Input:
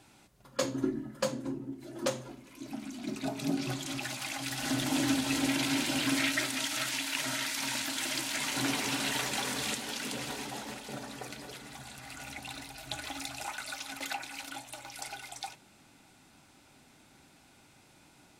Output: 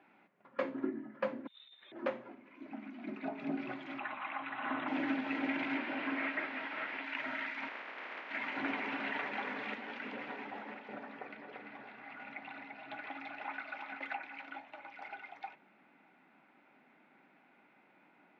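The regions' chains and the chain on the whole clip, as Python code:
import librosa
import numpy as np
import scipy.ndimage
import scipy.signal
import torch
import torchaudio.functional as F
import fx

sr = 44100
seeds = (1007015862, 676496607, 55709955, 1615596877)

y = fx.chain(x, sr, fx.freq_invert(carrier_hz=3900),
    fx.over_compress(threshold_db=-40.0, ratio=-0.5), at=(1.47, 1.92))
y = fx.chain(y, sr, fx.cheby_ripple(hz=4000.0, ripple_db=3),
    fx.peak_eq(hz=1100.0, db=11.0, octaves=0.64), at=(3.98, 4.88))
y = fx.chain(y, sr, fx.delta_mod(bps=32000, step_db=-38.5),
    fx.low_shelf(hz=150.0, db=-8.5), at=(5.77, 7.04))
y = fx.spec_flatten(y, sr, power=0.12, at=(7.67, 8.29), fade=0.02)
y = fx.highpass(y, sr, hz=290.0, slope=12, at=(7.67, 8.29), fade=0.02)
y = fx.air_absorb(y, sr, metres=73.0, at=(7.67, 8.29), fade=0.02)
y = fx.chain(y, sr, fx.lowpass(hz=6200.0, slope=12),
    fx.echo_single(ms=344, db=-5.5), at=(11.19, 13.99))
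y = scipy.signal.sosfilt(scipy.signal.ellip(3, 1.0, 60, [190.0, 2200.0], 'bandpass', fs=sr, output='sos'), y)
y = fx.tilt_eq(y, sr, slope=1.5)
y = F.gain(torch.from_numpy(y), -2.0).numpy()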